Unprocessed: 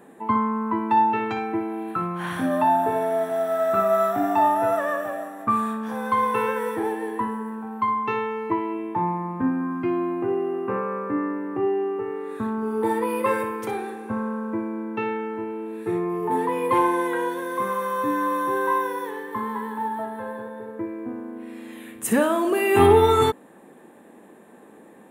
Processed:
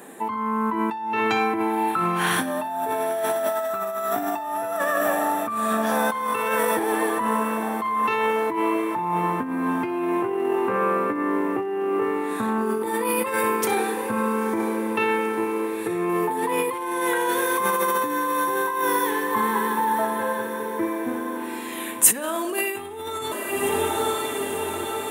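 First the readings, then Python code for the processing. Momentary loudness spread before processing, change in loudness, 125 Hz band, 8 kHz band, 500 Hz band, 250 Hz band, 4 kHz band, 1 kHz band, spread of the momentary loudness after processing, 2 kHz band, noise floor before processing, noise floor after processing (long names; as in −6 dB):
11 LU, +0.5 dB, −4.0 dB, +13.0 dB, −0.5 dB, 0.0 dB, +5.0 dB, 0.0 dB, 5 LU, +5.0 dB, −49 dBFS, −31 dBFS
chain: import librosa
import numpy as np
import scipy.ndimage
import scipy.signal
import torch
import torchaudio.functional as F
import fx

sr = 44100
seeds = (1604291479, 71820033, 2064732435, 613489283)

y = fx.echo_diffused(x, sr, ms=930, feedback_pct=66, wet_db=-14)
y = fx.over_compress(y, sr, threshold_db=-27.0, ratio=-1.0)
y = fx.highpass(y, sr, hz=220.0, slope=6)
y = fx.high_shelf(y, sr, hz=2900.0, db=11.5)
y = fx.dmg_crackle(y, sr, seeds[0], per_s=32.0, level_db=-50.0)
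y = y * 10.0 ** (3.0 / 20.0)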